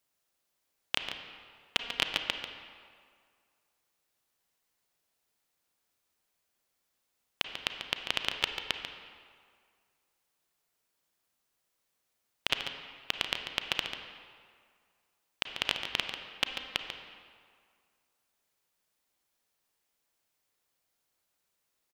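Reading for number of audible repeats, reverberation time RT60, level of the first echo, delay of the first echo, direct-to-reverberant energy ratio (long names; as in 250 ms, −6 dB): 1, 2.0 s, −9.0 dB, 142 ms, 4.0 dB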